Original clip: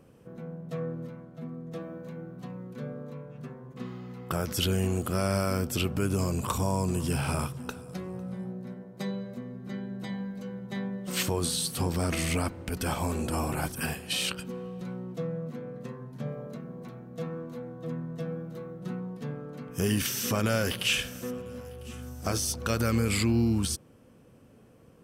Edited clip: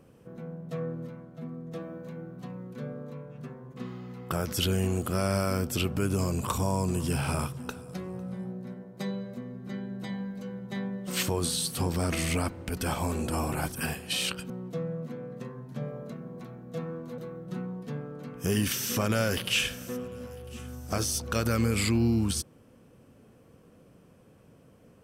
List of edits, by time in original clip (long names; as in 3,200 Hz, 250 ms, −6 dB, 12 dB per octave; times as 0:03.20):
0:14.50–0:14.94: remove
0:17.62–0:18.52: remove